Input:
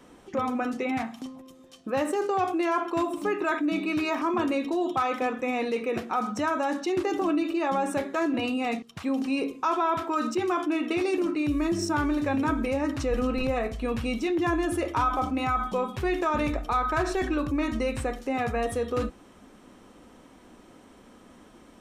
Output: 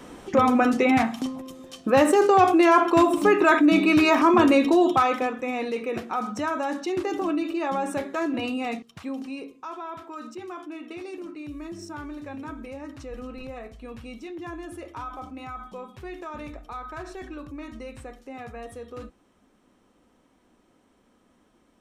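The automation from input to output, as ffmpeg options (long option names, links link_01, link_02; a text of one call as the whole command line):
ffmpeg -i in.wav -af "volume=9dB,afade=type=out:start_time=4.75:duration=0.57:silence=0.334965,afade=type=out:start_time=8.59:duration=0.91:silence=0.298538" out.wav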